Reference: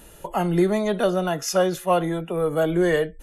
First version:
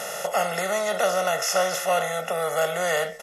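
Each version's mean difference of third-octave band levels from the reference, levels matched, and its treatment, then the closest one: 11.0 dB: per-bin compression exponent 0.4; HPF 1200 Hz 6 dB/oct; comb 1.5 ms, depth 100%; gain -3 dB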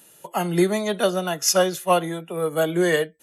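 3.5 dB: HPF 120 Hz 24 dB/oct; high shelf 2400 Hz +10 dB; upward expander 1.5:1, over -36 dBFS; gain +1 dB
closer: second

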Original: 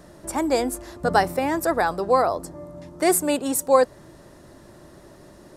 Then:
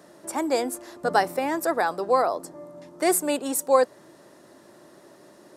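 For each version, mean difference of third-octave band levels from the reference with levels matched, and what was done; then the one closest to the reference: 2.0 dB: HPF 240 Hz 12 dB/oct; gain -2 dB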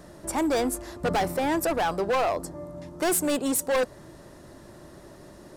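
4.0 dB: hard clip -21 dBFS, distortion -6 dB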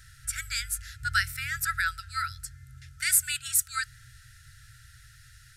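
16.5 dB: FFT band-reject 130–1300 Hz; gain +1.5 dB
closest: first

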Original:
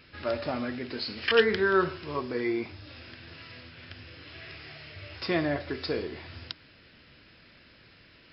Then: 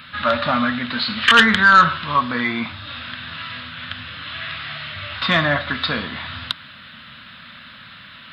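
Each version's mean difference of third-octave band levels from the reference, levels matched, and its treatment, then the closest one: 4.5 dB: EQ curve 230 Hz 0 dB, 390 Hz -29 dB, 560 Hz -13 dB, 790 Hz -13 dB, 1200 Hz -3 dB, 2400 Hz -14 dB, 3700 Hz -4 dB, 5300 Hz -28 dB, 9100 Hz 0 dB; overdrive pedal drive 29 dB, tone 2100 Hz, clips at -1.5 dBFS; high shelf 2000 Hz +8.5 dB; gain +2 dB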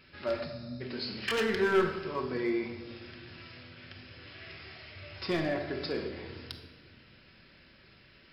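3.0 dB: spectral delete 0.45–0.81, 240–3600 Hz; overloaded stage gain 21 dB; shoebox room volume 1100 m³, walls mixed, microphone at 1.1 m; gain -4 dB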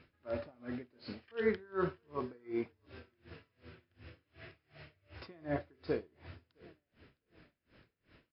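8.5 dB: LPF 1300 Hz 6 dB/oct; on a send: feedback echo 0.66 s, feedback 45%, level -22.5 dB; on the sum: dB-linear tremolo 2.7 Hz, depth 30 dB; gain -2 dB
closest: second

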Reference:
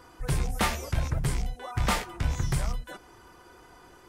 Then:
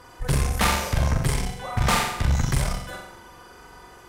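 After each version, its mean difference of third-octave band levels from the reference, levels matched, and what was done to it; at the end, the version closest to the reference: 3.5 dB: bell 310 Hz -6 dB 0.49 oct; on a send: flutter echo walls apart 7.5 m, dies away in 0.76 s; on the sum: tube stage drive 21 dB, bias 0.65; notch 1400 Hz, Q 28; gain +8 dB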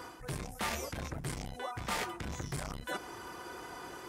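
7.5 dB: HPF 170 Hz 6 dB/oct; reverse; compressor 6:1, threshold -41 dBFS, peak gain reduction 17.5 dB; reverse; core saturation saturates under 400 Hz; gain +8 dB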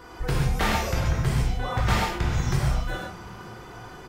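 5.5 dB: compressor, threshold -29 dBFS, peak gain reduction 8 dB; bell 10000 Hz -9 dB 0.8 oct; frequency-shifting echo 0.457 s, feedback 58%, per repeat +41 Hz, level -22 dB; non-linear reverb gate 0.17 s flat, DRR -4 dB; gain +5 dB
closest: first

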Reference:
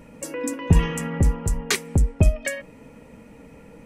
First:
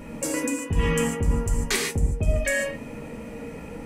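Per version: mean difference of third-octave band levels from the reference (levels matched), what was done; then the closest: 8.5 dB: reverse; compressor 6:1, threshold -29 dBFS, peak gain reduction 18 dB; reverse; non-linear reverb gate 0.17 s flat, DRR -0.5 dB; gain +5.5 dB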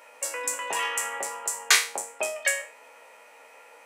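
13.0 dB: spectral trails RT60 0.36 s; HPF 660 Hz 24 dB/oct; gain +3 dB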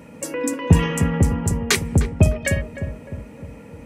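2.5 dB: HPF 67 Hz 24 dB/oct; on a send: darkening echo 0.304 s, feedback 56%, low-pass 920 Hz, level -8 dB; on the sum: gain +4 dB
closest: third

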